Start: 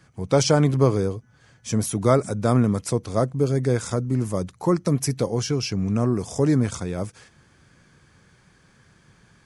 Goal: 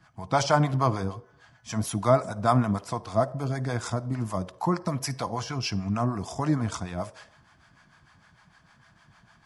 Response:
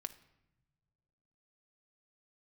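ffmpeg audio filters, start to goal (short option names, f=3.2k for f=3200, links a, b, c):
-filter_complex "[0:a]acrossover=split=540[a][b];[a]aeval=exprs='val(0)*(1-0.7/2+0.7/2*cos(2*PI*6.6*n/s))':c=same[c];[b]aeval=exprs='val(0)*(1-0.7/2-0.7/2*cos(2*PI*6.6*n/s))':c=same[d];[c][d]amix=inputs=2:normalize=0,asplit=2[e][f];[f]highpass=f=380:w=0.5412,highpass=f=380:w=1.3066,equalizer=f=410:t=q:w=4:g=-4,equalizer=f=670:t=q:w=4:g=9,equalizer=f=1k:t=q:w=4:g=7,equalizer=f=2.4k:t=q:w=4:g=-8,equalizer=f=4.1k:t=q:w=4:g=-4,equalizer=f=6.9k:t=q:w=4:g=-8,lowpass=f=8.4k:w=0.5412,lowpass=f=8.4k:w=1.3066[g];[1:a]atrim=start_sample=2205,afade=t=out:st=0.39:d=0.01,atrim=end_sample=17640[h];[g][h]afir=irnorm=-1:irlink=0,volume=3dB[i];[e][i]amix=inputs=2:normalize=0,volume=-2dB"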